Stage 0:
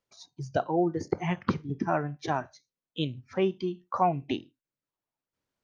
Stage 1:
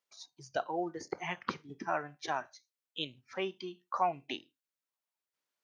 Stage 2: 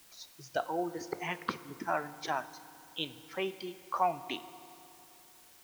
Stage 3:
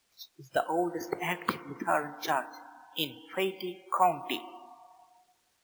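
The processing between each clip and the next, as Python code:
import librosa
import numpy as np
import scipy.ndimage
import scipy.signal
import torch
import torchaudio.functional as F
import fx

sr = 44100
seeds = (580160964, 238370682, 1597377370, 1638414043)

y1 = fx.highpass(x, sr, hz=1200.0, slope=6)
y2 = fx.quant_dither(y1, sr, seeds[0], bits=10, dither='triangular')
y2 = fx.rev_fdn(y2, sr, rt60_s=3.0, lf_ratio=1.0, hf_ratio=0.75, size_ms=19.0, drr_db=14.0)
y2 = F.gain(torch.from_numpy(y2), 1.0).numpy()
y3 = fx.sample_hold(y2, sr, seeds[1], rate_hz=18000.0, jitter_pct=0)
y3 = fx.noise_reduce_blind(y3, sr, reduce_db=19)
y3 = F.gain(torch.from_numpy(y3), 4.5).numpy()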